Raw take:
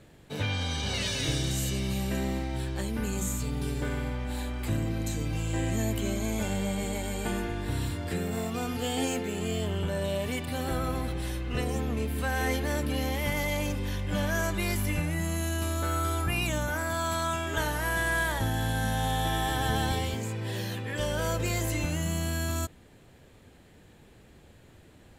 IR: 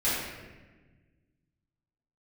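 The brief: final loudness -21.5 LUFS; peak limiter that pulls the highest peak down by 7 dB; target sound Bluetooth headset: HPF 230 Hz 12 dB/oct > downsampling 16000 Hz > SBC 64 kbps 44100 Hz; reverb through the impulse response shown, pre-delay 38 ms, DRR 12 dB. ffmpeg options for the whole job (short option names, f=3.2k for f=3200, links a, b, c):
-filter_complex "[0:a]alimiter=limit=-22.5dB:level=0:latency=1,asplit=2[a][b];[1:a]atrim=start_sample=2205,adelay=38[c];[b][c]afir=irnorm=-1:irlink=0,volume=-23.5dB[d];[a][d]amix=inputs=2:normalize=0,highpass=230,aresample=16000,aresample=44100,volume=13.5dB" -ar 44100 -c:a sbc -b:a 64k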